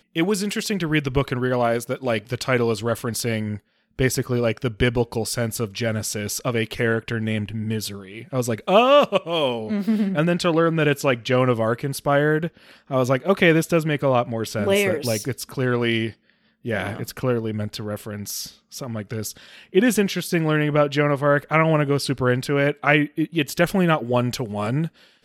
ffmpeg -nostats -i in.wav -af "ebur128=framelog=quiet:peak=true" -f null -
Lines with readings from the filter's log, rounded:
Integrated loudness:
  I:         -22.0 LUFS
  Threshold: -32.2 LUFS
Loudness range:
  LRA:         5.4 LU
  Threshold: -42.1 LUFS
  LRA low:   -25.5 LUFS
  LRA high:  -20.0 LUFS
True peak:
  Peak:       -2.2 dBFS